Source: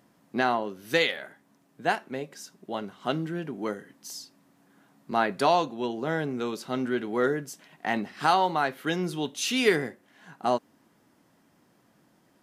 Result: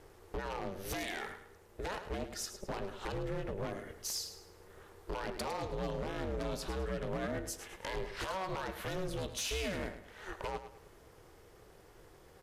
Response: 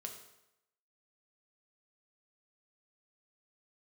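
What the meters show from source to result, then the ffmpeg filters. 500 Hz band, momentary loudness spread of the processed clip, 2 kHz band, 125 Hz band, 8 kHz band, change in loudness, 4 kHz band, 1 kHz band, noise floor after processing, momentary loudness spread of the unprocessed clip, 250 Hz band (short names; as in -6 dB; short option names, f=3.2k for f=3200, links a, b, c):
-10.5 dB, 21 LU, -12.5 dB, -4.5 dB, -3.0 dB, -11.5 dB, -9.0 dB, -14.5 dB, -59 dBFS, 15 LU, -12.0 dB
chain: -af "highpass=110,lowshelf=f=140:g=7.5,alimiter=limit=-21dB:level=0:latency=1:release=57,acompressor=threshold=-37dB:ratio=10,aeval=exprs='0.0168*(abs(mod(val(0)/0.0168+3,4)-2)-1)':c=same,aeval=exprs='val(0)*sin(2*PI*190*n/s)':c=same,aecho=1:1:106|212|318|424:0.282|0.0986|0.0345|0.0121,aresample=32000,aresample=44100,volume=7dB"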